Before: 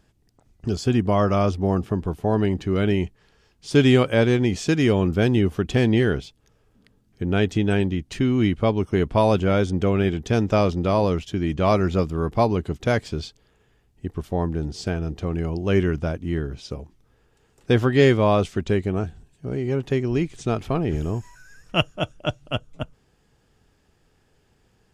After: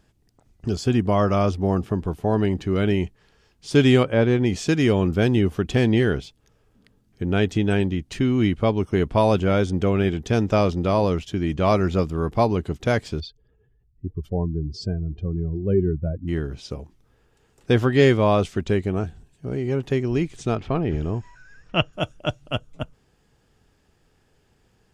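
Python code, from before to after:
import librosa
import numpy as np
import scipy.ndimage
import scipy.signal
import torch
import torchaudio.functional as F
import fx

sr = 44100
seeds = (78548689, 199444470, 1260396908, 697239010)

y = fx.lowpass(x, sr, hz=fx.line((4.03, 1400.0), (4.45, 2800.0)), slope=6, at=(4.03, 4.45), fade=0.02)
y = fx.spec_expand(y, sr, power=2.1, at=(13.19, 16.27), fade=0.02)
y = fx.lowpass(y, sr, hz=4100.0, slope=12, at=(20.55, 21.93))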